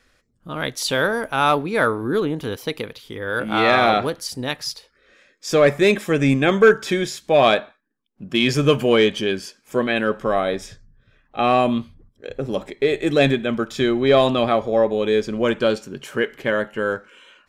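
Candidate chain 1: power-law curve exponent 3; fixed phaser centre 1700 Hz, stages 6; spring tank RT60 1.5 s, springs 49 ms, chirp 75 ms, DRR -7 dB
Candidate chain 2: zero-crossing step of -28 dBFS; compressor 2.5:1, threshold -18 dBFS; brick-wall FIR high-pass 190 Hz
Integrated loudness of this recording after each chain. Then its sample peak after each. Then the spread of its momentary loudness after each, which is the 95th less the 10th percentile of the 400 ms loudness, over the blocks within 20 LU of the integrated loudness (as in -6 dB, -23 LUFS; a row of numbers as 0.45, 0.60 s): -29.0, -22.5 LUFS; -8.5, -8.5 dBFS; 18, 11 LU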